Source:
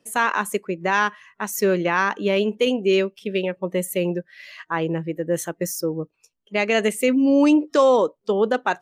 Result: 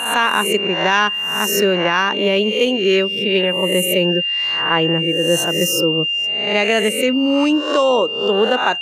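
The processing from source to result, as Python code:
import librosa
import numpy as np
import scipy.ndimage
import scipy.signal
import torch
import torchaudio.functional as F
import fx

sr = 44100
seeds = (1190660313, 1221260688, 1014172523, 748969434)

y = fx.spec_swells(x, sr, rise_s=0.62)
y = y + 10.0 ** (-24.0 / 20.0) * np.sin(2.0 * np.pi * 2800.0 * np.arange(len(y)) / sr)
y = fx.rider(y, sr, range_db=10, speed_s=0.5)
y = y * 10.0 ** (3.0 / 20.0)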